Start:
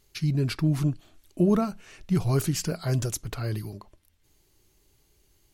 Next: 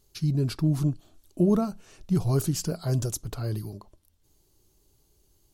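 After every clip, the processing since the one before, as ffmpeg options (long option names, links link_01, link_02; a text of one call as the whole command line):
ffmpeg -i in.wav -af "equalizer=frequency=2100:width=1.2:gain=-10.5" out.wav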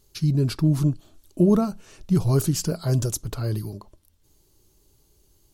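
ffmpeg -i in.wav -af "bandreject=frequency=730:width=12,volume=4dB" out.wav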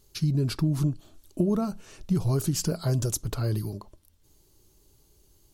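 ffmpeg -i in.wav -af "acompressor=threshold=-21dB:ratio=6" out.wav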